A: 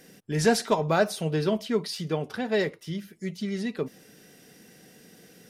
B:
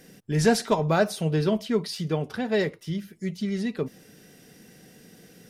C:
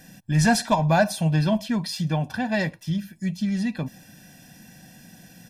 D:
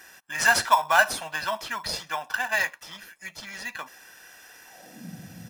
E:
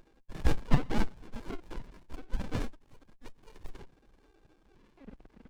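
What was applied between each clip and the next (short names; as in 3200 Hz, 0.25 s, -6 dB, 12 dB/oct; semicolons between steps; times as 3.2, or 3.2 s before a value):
low shelf 150 Hz +8 dB
comb 1.2 ms, depth 97%; in parallel at -10 dB: soft clip -16 dBFS, distortion -15 dB; on the sum: gain -1.5 dB
high-pass sweep 1200 Hz -> 89 Hz, 4.63–5.24; in parallel at -7 dB: sample-and-hold 10×
sine-wave speech; running maximum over 65 samples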